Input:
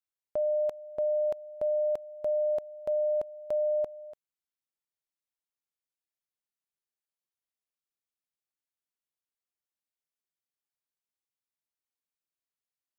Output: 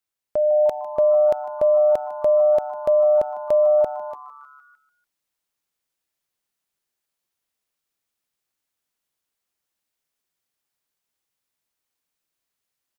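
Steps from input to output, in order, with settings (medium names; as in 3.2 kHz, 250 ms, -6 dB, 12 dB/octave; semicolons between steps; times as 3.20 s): frequency-shifting echo 151 ms, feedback 62%, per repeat +140 Hz, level -18 dB; level rider gain up to 4.5 dB; trim +7 dB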